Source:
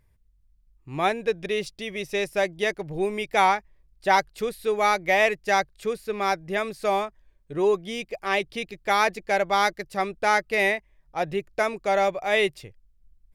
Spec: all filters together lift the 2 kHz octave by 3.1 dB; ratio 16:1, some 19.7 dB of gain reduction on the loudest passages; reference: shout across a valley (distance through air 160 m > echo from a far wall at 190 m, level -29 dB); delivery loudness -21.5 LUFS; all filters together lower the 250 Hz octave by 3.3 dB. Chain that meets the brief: peaking EQ 250 Hz -5 dB; peaking EQ 2 kHz +5.5 dB; compression 16:1, threshold -33 dBFS; distance through air 160 m; echo from a far wall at 190 m, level -29 dB; trim +17.5 dB

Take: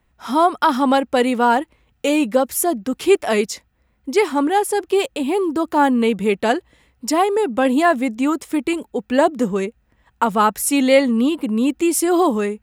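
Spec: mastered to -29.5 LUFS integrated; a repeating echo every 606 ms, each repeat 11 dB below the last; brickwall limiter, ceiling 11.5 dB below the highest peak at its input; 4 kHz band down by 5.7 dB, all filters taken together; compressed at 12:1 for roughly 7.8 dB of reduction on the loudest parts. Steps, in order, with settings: peaking EQ 4 kHz -8.5 dB; compression 12:1, threshold -17 dBFS; peak limiter -19 dBFS; feedback delay 606 ms, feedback 28%, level -11 dB; trim -2.5 dB

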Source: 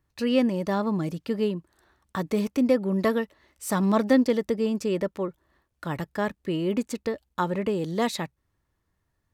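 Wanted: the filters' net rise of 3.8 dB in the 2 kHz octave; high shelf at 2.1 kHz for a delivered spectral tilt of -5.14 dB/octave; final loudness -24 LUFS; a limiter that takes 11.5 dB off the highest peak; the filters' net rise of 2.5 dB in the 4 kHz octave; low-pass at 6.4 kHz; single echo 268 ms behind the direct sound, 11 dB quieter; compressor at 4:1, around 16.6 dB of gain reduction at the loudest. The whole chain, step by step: low-pass 6.4 kHz; peaking EQ 2 kHz +5.5 dB; treble shelf 2.1 kHz -4 dB; peaking EQ 4 kHz +5.5 dB; compression 4:1, threshold -36 dBFS; peak limiter -29 dBFS; delay 268 ms -11 dB; trim +15.5 dB

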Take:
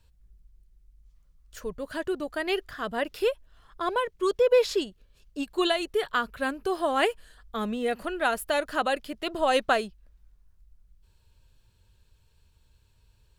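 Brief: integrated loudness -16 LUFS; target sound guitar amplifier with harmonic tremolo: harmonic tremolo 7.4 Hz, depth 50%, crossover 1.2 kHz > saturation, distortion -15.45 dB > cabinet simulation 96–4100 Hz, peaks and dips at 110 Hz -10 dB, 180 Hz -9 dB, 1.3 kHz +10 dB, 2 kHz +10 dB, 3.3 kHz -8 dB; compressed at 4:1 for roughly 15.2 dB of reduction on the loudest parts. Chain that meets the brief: compression 4:1, threshold -36 dBFS; harmonic tremolo 7.4 Hz, depth 50%, crossover 1.2 kHz; saturation -33.5 dBFS; cabinet simulation 96–4100 Hz, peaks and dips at 110 Hz -10 dB, 180 Hz -9 dB, 1.3 kHz +10 dB, 2 kHz +10 dB, 3.3 kHz -8 dB; trim +25 dB

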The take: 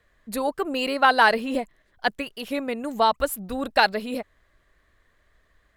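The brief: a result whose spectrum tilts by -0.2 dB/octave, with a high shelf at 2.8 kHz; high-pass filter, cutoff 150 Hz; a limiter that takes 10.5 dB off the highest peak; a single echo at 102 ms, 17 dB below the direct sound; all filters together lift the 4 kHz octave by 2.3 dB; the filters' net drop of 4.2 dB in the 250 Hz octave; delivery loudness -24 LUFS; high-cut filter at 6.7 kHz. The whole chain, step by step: high-pass 150 Hz; low-pass 6.7 kHz; peaking EQ 250 Hz -4 dB; treble shelf 2.8 kHz -7 dB; peaking EQ 4 kHz +8.5 dB; peak limiter -14 dBFS; delay 102 ms -17 dB; trim +4.5 dB

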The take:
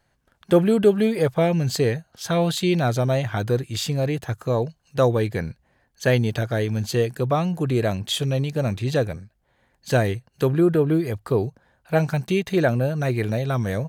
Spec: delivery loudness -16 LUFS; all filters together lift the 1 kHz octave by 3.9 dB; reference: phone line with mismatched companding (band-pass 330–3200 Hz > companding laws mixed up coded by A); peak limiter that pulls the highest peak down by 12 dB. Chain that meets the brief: peaking EQ 1 kHz +6 dB; peak limiter -15 dBFS; band-pass 330–3200 Hz; companding laws mixed up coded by A; trim +13.5 dB

